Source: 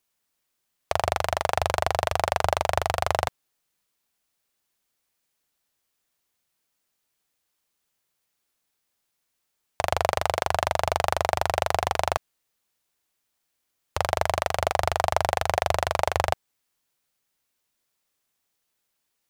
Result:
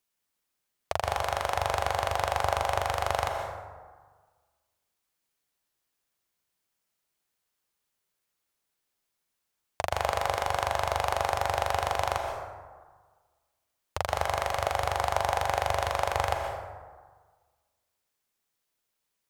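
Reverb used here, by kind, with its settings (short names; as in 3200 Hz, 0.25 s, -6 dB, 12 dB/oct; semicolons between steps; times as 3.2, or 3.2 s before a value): plate-style reverb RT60 1.5 s, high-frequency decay 0.45×, pre-delay 0.11 s, DRR 3 dB; gain -5 dB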